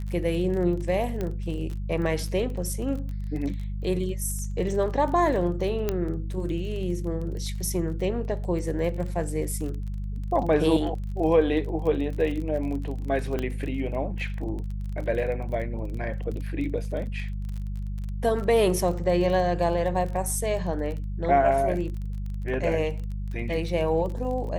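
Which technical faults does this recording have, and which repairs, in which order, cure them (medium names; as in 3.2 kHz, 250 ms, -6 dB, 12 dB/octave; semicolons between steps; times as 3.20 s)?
crackle 29 per s -33 dBFS
hum 50 Hz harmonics 4 -31 dBFS
1.21 s: pop -18 dBFS
5.89 s: pop -12 dBFS
13.39 s: pop -16 dBFS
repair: de-click; de-hum 50 Hz, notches 4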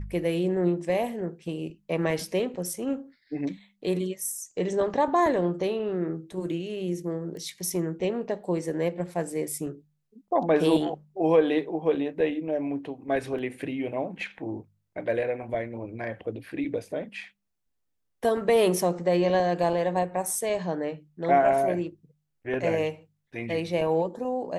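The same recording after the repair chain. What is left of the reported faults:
5.89 s: pop
13.39 s: pop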